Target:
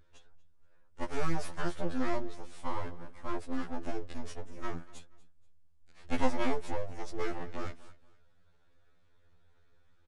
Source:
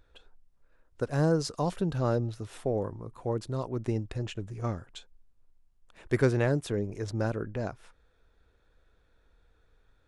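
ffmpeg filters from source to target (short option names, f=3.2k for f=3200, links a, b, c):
-filter_complex "[0:a]aeval=exprs='abs(val(0))':c=same,asplit=2[a][b];[b]aecho=0:1:239|478:0.0944|0.0293[c];[a][c]amix=inputs=2:normalize=0,aresample=22050,aresample=44100,afftfilt=real='re*2*eq(mod(b,4),0)':imag='im*2*eq(mod(b,4),0)':win_size=2048:overlap=0.75"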